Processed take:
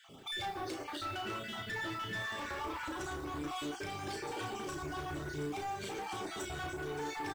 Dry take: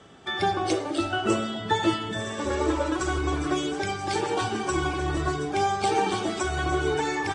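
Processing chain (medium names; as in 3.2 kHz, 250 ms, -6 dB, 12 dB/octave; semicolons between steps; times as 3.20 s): random holes in the spectrogram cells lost 30%; 0.84–2.85 s: graphic EQ 250/500/1000/2000/8000 Hz -5/-6/+4/+6/-7 dB; compression, threshold -30 dBFS, peak gain reduction 10 dB; flange 1.1 Hz, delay 6.8 ms, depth 1.6 ms, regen -84%; short-mantissa float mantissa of 2-bit; saturation -38 dBFS, distortion -11 dB; doubling 34 ms -5.5 dB; trim +1.5 dB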